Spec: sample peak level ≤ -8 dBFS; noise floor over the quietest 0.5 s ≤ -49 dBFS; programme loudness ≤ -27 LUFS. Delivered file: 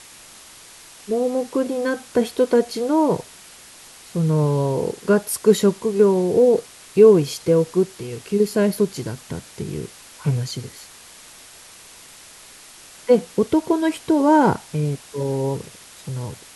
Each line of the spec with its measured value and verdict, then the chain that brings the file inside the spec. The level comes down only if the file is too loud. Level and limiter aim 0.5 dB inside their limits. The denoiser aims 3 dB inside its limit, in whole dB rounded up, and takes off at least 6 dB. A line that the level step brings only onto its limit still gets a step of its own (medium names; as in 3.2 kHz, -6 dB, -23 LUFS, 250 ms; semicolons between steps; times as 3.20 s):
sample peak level -2.0 dBFS: fail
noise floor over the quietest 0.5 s -44 dBFS: fail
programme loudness -20.0 LUFS: fail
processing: trim -7.5 dB